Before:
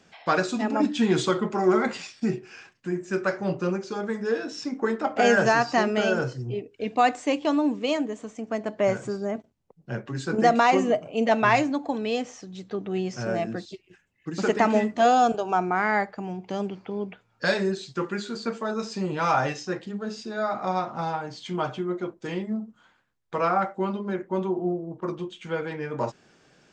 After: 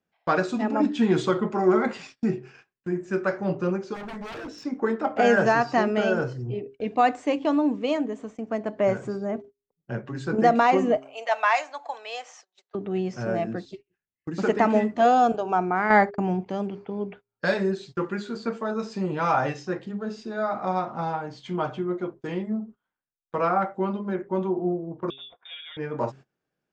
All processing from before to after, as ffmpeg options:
-filter_complex "[0:a]asettb=1/sr,asplit=3[a][b][c];[a]atrim=end=3.944[d];[b]atrim=start=3.94:end=4.65,asetpts=PTS-STARTPTS,afade=t=in:d=0.004:c=qsin,afade=t=out:st=0.706:d=0.004:c=qsin,aeval=exprs='0.0316*(abs(mod(val(0)/0.0316+3,4)-2)-1)':c=same,tremolo=f=210:d=0.261[e];[c]atrim=start=4.646[f];[d][e]acrossfade=d=0.004:c1=hsin:c2=qsin[g];[g][f]acrossfade=d=0.004:c1=qsin:c2=hsin,asettb=1/sr,asplit=3[h][i][j];[h]atrim=end=10.974[k];[i]atrim=start=10.97:end=12.75,asetpts=PTS-STARTPTS,afade=t=in:d=0.004:c=qsin,afade=t=out:st=1.776:d=0.004:c=qsin,highpass=f=690:w=0.5412,highpass=f=690:w=1.3066,highshelf=f=5.6k:g=7.5[l];[j]atrim=start=12.746[m];[k][l]acrossfade=d=0.004:c1=hsin:c2=qsin[n];[n][m]acrossfade=d=0.004:c1=qsin:c2=hsin,asettb=1/sr,asplit=3[o][p][q];[o]atrim=end=15.904[r];[p]atrim=start=15.9:end=16.46,asetpts=PTS-STARTPTS,afade=t=in:d=0.004:c=qsin,afade=t=out:st=0.556:d=0.004:c=qsin,agate=range=-38dB:threshold=-43dB:ratio=16:release=100:detection=peak,acontrast=84[s];[q]atrim=start=16.456[t];[r][s]acrossfade=d=0.004:c1=hsin:c2=qsin[u];[u][t]acrossfade=d=0.004:c1=qsin:c2=hsin,asettb=1/sr,asplit=3[v][w][x];[v]atrim=end=25.104[y];[w]atrim=start=25.1:end=25.77,asetpts=PTS-STARTPTS,afade=t=in:d=0.004:c=qsin,afade=t=out:st=0.666:d=0.004:c=qsin,acompressor=threshold=-36dB:ratio=2.5:attack=3.2:release=140:knee=1:detection=peak,lowpass=f=3.2k:t=q:w=0.5098,lowpass=f=3.2k:t=q:w=0.6013,lowpass=f=3.2k:t=q:w=0.9,lowpass=f=3.2k:t=q:w=2.563,afreqshift=-3800,lowshelf=f=330:g=-8[z];[x]atrim=start=25.766[aa];[y][z]acrossfade=d=0.004:c1=hsin:c2=qsin[ab];[ab][aa]acrossfade=d=0.004:c1=qsin:c2=hsin,bandreject=f=135:t=h:w=4,bandreject=f=270:t=h:w=4,bandreject=f=405:t=h:w=4,agate=range=-24dB:threshold=-43dB:ratio=16:detection=peak,highshelf=f=3.1k:g=-10.5,volume=1dB"

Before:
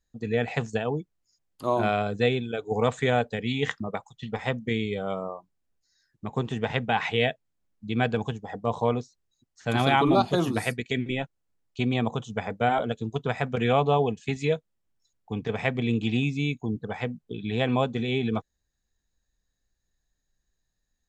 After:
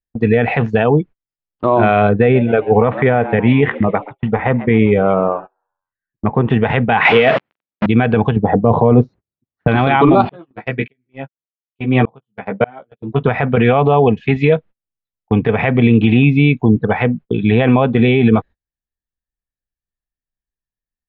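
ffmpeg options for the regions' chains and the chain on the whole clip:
-filter_complex "[0:a]asettb=1/sr,asplit=3[a][b][c];[a]atrim=end=2.094[d];[b]atrim=start=2.09:end=6.5,asetpts=PTS-STARTPTS,afade=t=in:d=0.004:c=qsin,afade=t=out:st=4.406:d=0.004:c=qsin,lowpass=2.1k,asplit=5[e][f][g][h][i];[f]adelay=132,afreqshift=98,volume=-20.5dB[j];[g]adelay=264,afreqshift=196,volume=-26.5dB[k];[h]adelay=396,afreqshift=294,volume=-32.5dB[l];[i]adelay=528,afreqshift=392,volume=-38.6dB[m];[e][j][k][l][m]amix=inputs=5:normalize=0,atrim=end_sample=194481[n];[c]atrim=start=6.496[o];[d][n]acrossfade=d=0.004:c1=hsin:c2=qsin[p];[p][o]acrossfade=d=0.004:c1=qsin:c2=hsin,asettb=1/sr,asplit=3[q][r][s];[q]atrim=end=7.054[t];[r]atrim=start=7.05:end=7.86,asetpts=PTS-STARTPTS,afade=t=in:d=0.004:c=qsin,afade=t=out:st=0.806:d=0.004:c=qsin,aeval=exprs='val(0)+0.5*0.0631*sgn(val(0))':c=same,highpass=190[u];[s]atrim=start=7.856[v];[t][u]acrossfade=d=0.004:c1=hsin:c2=qsin[w];[w][v]acrossfade=d=0.004:c1=qsin:c2=hsin,asettb=1/sr,asplit=3[x][y][z];[x]atrim=end=8.364[aa];[y]atrim=start=8.36:end=9.68,asetpts=PTS-STARTPTS,afade=t=in:d=0.004:c=qsin,afade=t=out:st=1.316:d=0.004:c=qsin,highpass=76,tiltshelf=f=1.3k:g=10[ab];[z]atrim=start=9.676[ac];[aa][ab]acrossfade=d=0.004:c1=hsin:c2=qsin[ad];[ad][ac]acrossfade=d=0.004:c1=qsin:c2=hsin,asettb=1/sr,asplit=3[ae][af][ag];[ae]atrim=end=10.294[ah];[af]atrim=start=10.29:end=13.24,asetpts=PTS-STARTPTS,afade=t=in:d=0.004:c=qsin,afade=t=out:st=2.946:d=0.004:c=qsin,highpass=110,lowpass=4k,asplit=2[ai][aj];[aj]adelay=15,volume=-4dB[ak];[ai][ak]amix=inputs=2:normalize=0,atrim=end_sample=130095,aeval=exprs='val(0)*pow(10,-38*if(lt(mod(-1.7*n/s,1),2*abs(-1.7)/1000),1-mod(-1.7*n/s,1)/(2*abs(-1.7)/1000),(mod(-1.7*n/s,1)-2*abs(-1.7)/1000)/(1-2*abs(-1.7)/1000))/20)':c=same[al];[ag]atrim=start=13.236[am];[ah][al]acrossfade=d=0.004:c1=hsin:c2=qsin[an];[an][am]acrossfade=d=0.004:c1=qsin:c2=hsin,lowpass=f=2.7k:w=0.5412,lowpass=f=2.7k:w=1.3066,agate=range=-31dB:threshold=-44dB:ratio=16:detection=peak,alimiter=level_in=19dB:limit=-1dB:release=50:level=0:latency=1,volume=-1dB"

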